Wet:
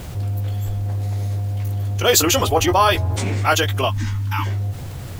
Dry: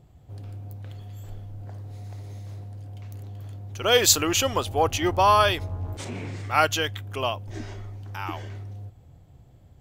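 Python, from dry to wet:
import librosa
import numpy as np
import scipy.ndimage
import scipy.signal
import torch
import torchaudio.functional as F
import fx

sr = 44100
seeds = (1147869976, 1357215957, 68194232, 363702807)

y = fx.high_shelf(x, sr, hz=11000.0, db=8.0)
y = fx.doubler(y, sr, ms=31.0, db=-7)
y = fx.stretch_vocoder(y, sr, factor=0.53)
y = fx.spec_box(y, sr, start_s=3.89, length_s=0.57, low_hz=320.0, high_hz=820.0, gain_db=-26)
y = fx.dmg_noise_colour(y, sr, seeds[0], colour='pink', level_db=-62.0)
y = fx.env_flatten(y, sr, amount_pct=50)
y = y * librosa.db_to_amplitude(2.5)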